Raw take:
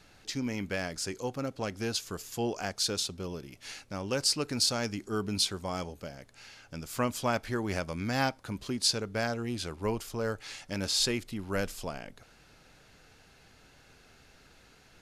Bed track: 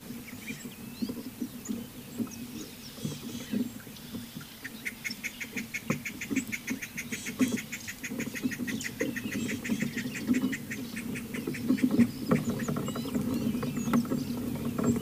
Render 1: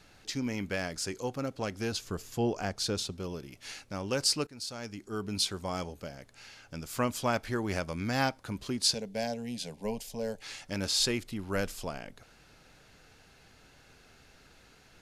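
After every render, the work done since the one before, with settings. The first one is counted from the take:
0:01.92–0:03.12: spectral tilt −1.5 dB per octave
0:04.47–0:05.63: fade in, from −19 dB
0:08.94–0:10.42: phaser with its sweep stopped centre 340 Hz, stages 6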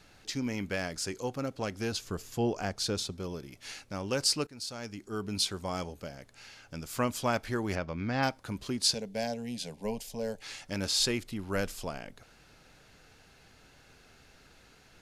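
0:02.99–0:03.60: notch filter 2,800 Hz
0:07.75–0:08.23: high-frequency loss of the air 190 metres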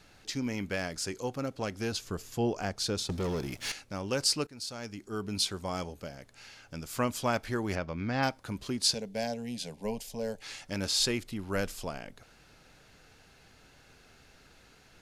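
0:03.09–0:03.72: leveller curve on the samples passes 3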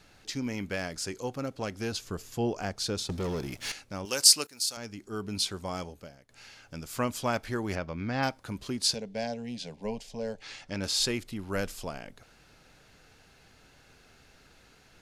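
0:04.05–0:04.77: RIAA equalisation recording
0:05.57–0:06.29: fade out equal-power, to −17 dB
0:08.96–0:10.84: low-pass filter 5,900 Hz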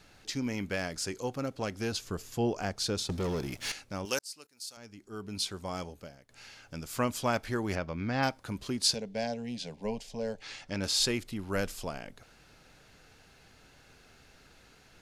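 0:04.19–0:06.06: fade in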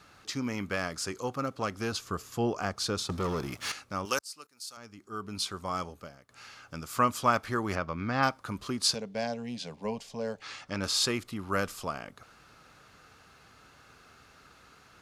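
high-pass filter 52 Hz
parametric band 1,200 Hz +12 dB 0.45 octaves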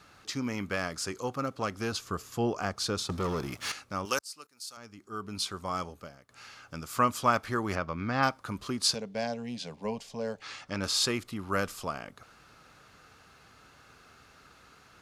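no processing that can be heard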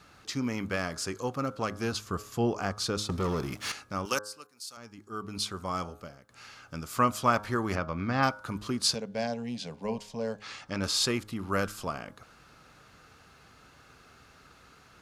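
low-shelf EQ 380 Hz +3 dB
hum removal 104.4 Hz, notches 16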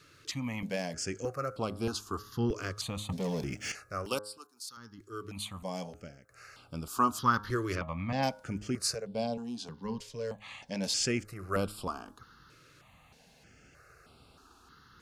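step-sequenced phaser 3.2 Hz 210–6,300 Hz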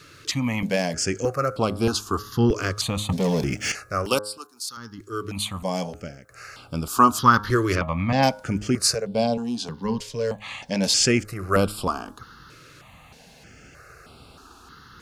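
level +11 dB
brickwall limiter −3 dBFS, peak gain reduction 1 dB

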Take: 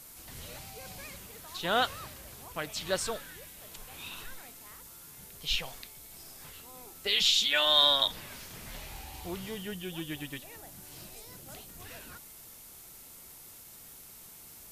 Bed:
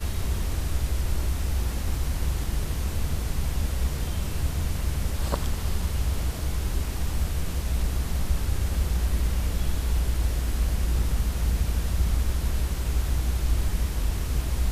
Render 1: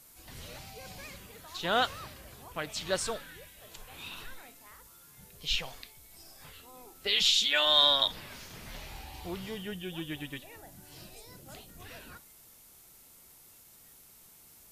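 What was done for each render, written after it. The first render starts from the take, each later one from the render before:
noise reduction from a noise print 6 dB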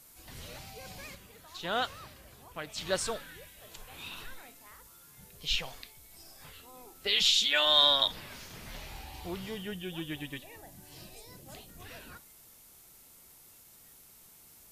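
0:01.15–0:02.78: clip gain −4 dB
0:10.20–0:11.62: Butterworth band-reject 1,400 Hz, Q 8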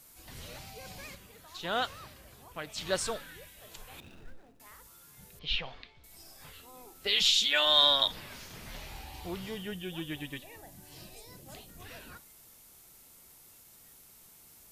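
0:04.00–0:04.60: running median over 41 samples
0:05.39–0:06.04: low-pass filter 3,900 Hz 24 dB per octave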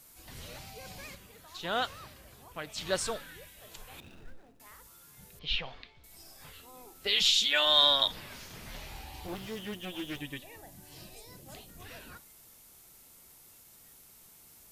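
0:09.27–0:10.21: lower of the sound and its delayed copy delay 9.2 ms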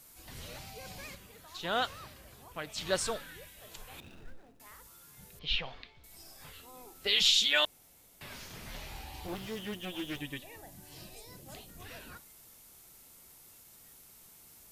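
0:07.65–0:08.21: fill with room tone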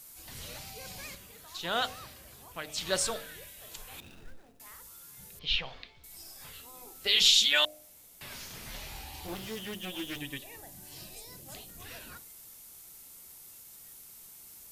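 high-shelf EQ 3,800 Hz +6.5 dB
hum removal 50.74 Hz, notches 15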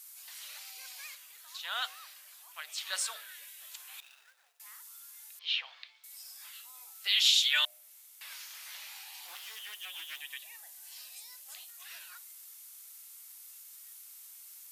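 Bessel high-pass filter 1,400 Hz, order 4
dynamic equaliser 5,900 Hz, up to −4 dB, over −47 dBFS, Q 0.92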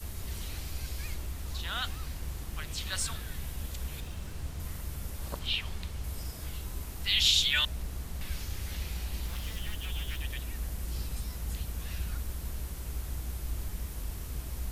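mix in bed −11.5 dB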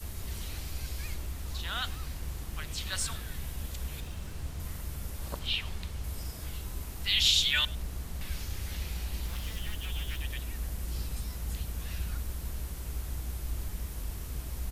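single-tap delay 101 ms −23 dB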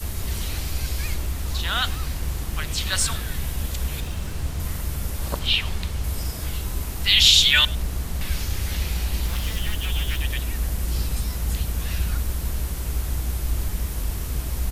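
level +10.5 dB
brickwall limiter −3 dBFS, peak gain reduction 1 dB

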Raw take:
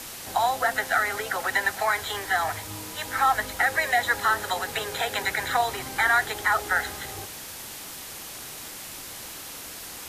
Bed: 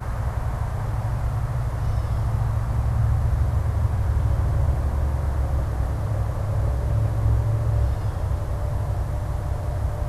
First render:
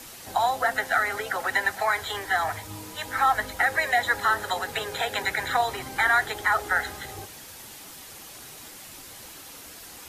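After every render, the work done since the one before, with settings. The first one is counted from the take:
broadband denoise 6 dB, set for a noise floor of −40 dBFS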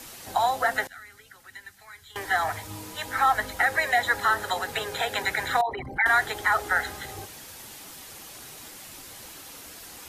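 0:00.87–0:02.16: guitar amp tone stack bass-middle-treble 6-0-2
0:05.61–0:06.06: spectral envelope exaggerated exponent 3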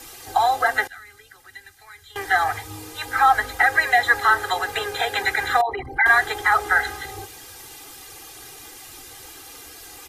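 comb filter 2.5 ms, depth 80%
dynamic equaliser 1,400 Hz, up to +4 dB, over −34 dBFS, Q 0.8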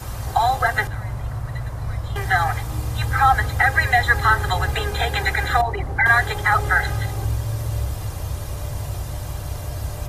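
mix in bed −3 dB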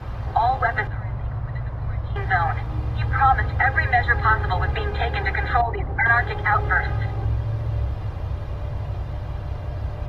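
high-frequency loss of the air 340 metres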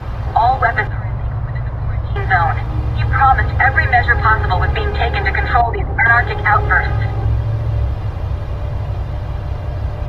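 level +7 dB
brickwall limiter −1 dBFS, peak gain reduction 2.5 dB

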